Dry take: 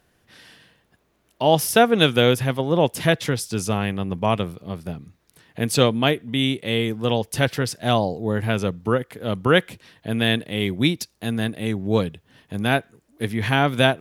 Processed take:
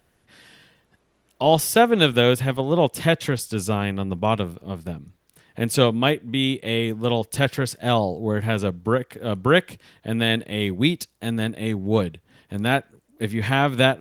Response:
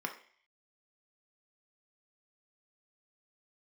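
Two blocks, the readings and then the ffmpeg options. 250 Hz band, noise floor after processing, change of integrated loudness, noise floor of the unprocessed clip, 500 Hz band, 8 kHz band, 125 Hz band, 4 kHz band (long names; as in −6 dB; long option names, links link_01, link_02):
−0.5 dB, −66 dBFS, −0.5 dB, −66 dBFS, 0.0 dB, −1.0 dB, −0.5 dB, −0.5 dB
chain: -ar 48000 -c:a libopus -b:a 24k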